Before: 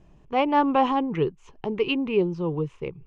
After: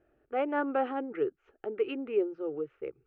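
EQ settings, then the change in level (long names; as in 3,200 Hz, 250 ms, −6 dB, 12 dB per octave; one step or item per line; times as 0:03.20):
high-pass filter 290 Hz 6 dB per octave
low-pass with resonance 1,400 Hz, resonance Q 4.4
phaser with its sweep stopped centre 420 Hz, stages 4
−4.0 dB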